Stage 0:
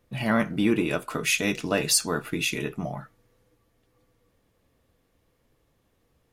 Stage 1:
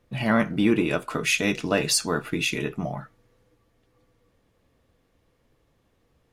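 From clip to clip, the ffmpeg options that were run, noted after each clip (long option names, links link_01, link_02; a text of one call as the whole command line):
ffmpeg -i in.wav -af "highshelf=frequency=9800:gain=-10,volume=2dB" out.wav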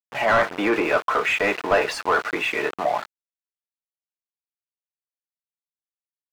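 ffmpeg -i in.wav -filter_complex "[0:a]acrossover=split=460 2300:gain=0.1 1 0.126[link_01][link_02][link_03];[link_01][link_02][link_03]amix=inputs=3:normalize=0,aeval=exprs='val(0)*gte(abs(val(0)),0.00841)':channel_layout=same,asplit=2[link_04][link_05];[link_05]highpass=frequency=720:poles=1,volume=21dB,asoftclip=type=tanh:threshold=-11.5dB[link_06];[link_04][link_06]amix=inputs=2:normalize=0,lowpass=frequency=1400:poles=1,volume=-6dB,volume=4dB" out.wav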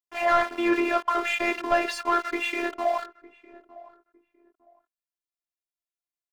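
ffmpeg -i in.wav -filter_complex "[0:a]afftfilt=real='hypot(re,im)*cos(PI*b)':imag='0':win_size=512:overlap=0.75,asplit=2[link_01][link_02];[link_02]adelay=907,lowpass=frequency=800:poles=1,volume=-18dB,asplit=2[link_03][link_04];[link_04]adelay=907,lowpass=frequency=800:poles=1,volume=0.28[link_05];[link_01][link_03][link_05]amix=inputs=3:normalize=0" out.wav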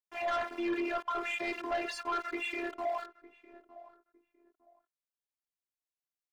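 ffmpeg -i in.wav -af "asoftclip=type=tanh:threshold=-21dB,volume=-6dB" out.wav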